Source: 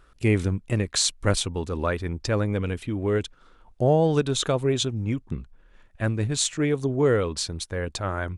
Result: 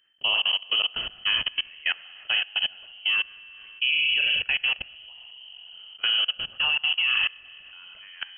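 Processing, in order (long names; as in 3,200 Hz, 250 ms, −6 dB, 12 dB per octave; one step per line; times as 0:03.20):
spring reverb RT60 1.9 s, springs 31/45 ms, chirp 40 ms, DRR 1.5 dB
output level in coarse steps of 23 dB
voice inversion scrambler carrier 3,100 Hz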